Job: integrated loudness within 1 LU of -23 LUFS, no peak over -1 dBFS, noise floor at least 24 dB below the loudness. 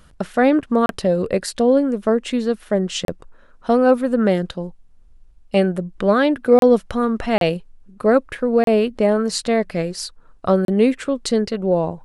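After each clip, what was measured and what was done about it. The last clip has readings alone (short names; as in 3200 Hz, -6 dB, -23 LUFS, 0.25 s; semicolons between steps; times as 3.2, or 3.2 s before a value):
dropouts 6; longest dropout 32 ms; loudness -19.0 LUFS; peak -2.5 dBFS; loudness target -23.0 LUFS
-> interpolate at 0.86/3.05/6.59/7.38/8.64/10.65, 32 ms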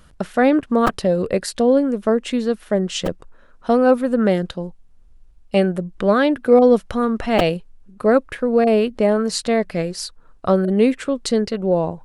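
dropouts 0; loudness -18.5 LUFS; peak -2.5 dBFS; loudness target -23.0 LUFS
-> gain -4.5 dB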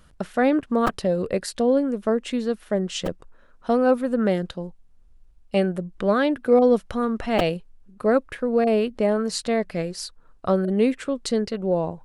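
loudness -23.0 LUFS; peak -7.0 dBFS; noise floor -53 dBFS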